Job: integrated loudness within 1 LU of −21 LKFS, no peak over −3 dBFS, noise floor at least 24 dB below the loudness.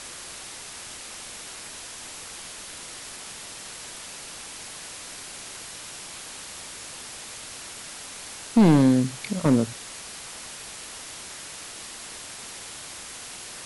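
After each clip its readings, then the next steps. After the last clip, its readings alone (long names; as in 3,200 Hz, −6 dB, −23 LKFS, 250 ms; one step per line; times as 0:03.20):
share of clipped samples 0.3%; peaks flattened at −11.5 dBFS; background noise floor −40 dBFS; target noise floor −54 dBFS; integrated loudness −29.5 LKFS; sample peak −11.5 dBFS; target loudness −21.0 LKFS
→ clipped peaks rebuilt −11.5 dBFS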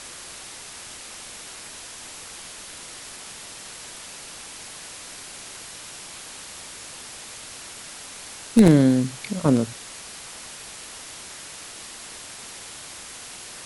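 share of clipped samples 0.0%; background noise floor −40 dBFS; target noise floor −52 dBFS
→ broadband denoise 12 dB, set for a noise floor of −40 dBFS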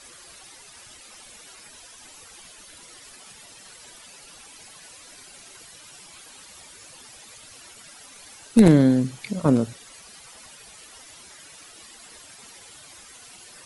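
background noise floor −47 dBFS; integrated loudness −19.5 LKFS; sample peak −2.5 dBFS; target loudness −21.0 LKFS
→ level −1.5 dB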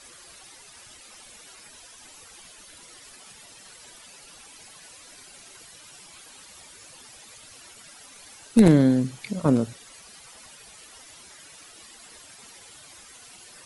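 integrated loudness −21.0 LKFS; sample peak −4.0 dBFS; background noise floor −49 dBFS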